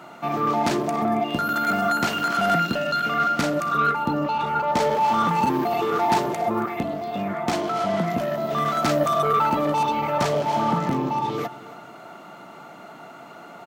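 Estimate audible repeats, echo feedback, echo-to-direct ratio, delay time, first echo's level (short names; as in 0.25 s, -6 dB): 2, 31%, -17.5 dB, 0.275 s, -18.0 dB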